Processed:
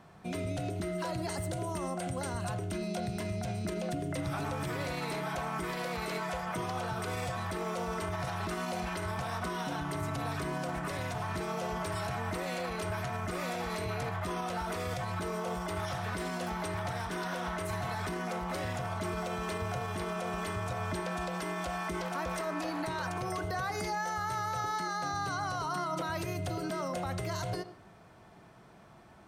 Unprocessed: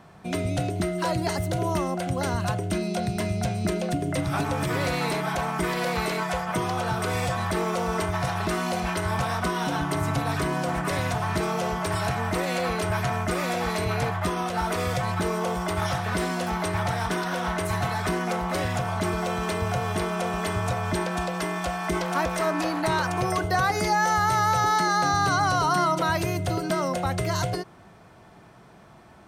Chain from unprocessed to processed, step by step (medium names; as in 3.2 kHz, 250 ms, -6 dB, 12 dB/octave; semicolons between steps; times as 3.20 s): 1.30–2.50 s: peaking EQ 8.5 kHz +8.5 dB 0.37 oct; peak limiter -21.5 dBFS, peak gain reduction 8 dB; reverberation RT60 0.40 s, pre-delay 40 ms, DRR 12.5 dB; trim -5.5 dB